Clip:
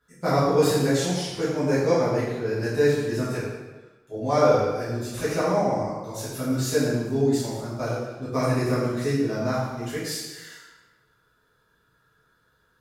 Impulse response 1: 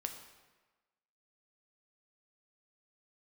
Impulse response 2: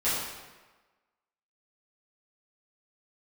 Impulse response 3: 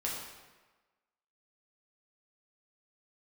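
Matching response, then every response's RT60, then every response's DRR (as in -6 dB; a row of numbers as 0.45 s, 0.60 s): 2; 1.3 s, 1.3 s, 1.3 s; 4.5 dB, -13.0 dB, -5.0 dB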